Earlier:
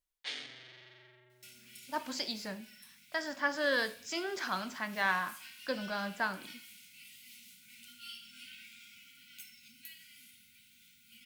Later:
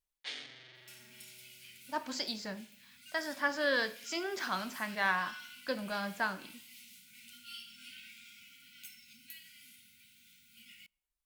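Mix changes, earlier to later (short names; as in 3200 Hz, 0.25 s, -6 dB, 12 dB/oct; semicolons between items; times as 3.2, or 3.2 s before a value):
first sound: send -10.0 dB; second sound: entry -0.55 s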